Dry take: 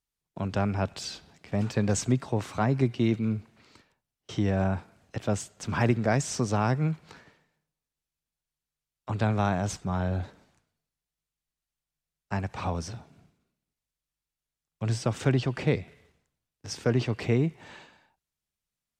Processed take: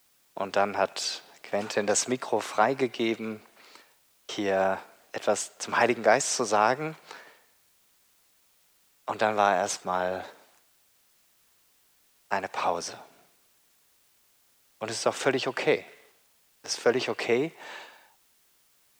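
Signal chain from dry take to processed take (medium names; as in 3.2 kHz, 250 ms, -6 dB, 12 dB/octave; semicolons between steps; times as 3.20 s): Chebyshev high-pass 530 Hz, order 2; word length cut 12-bit, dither triangular; trim +7 dB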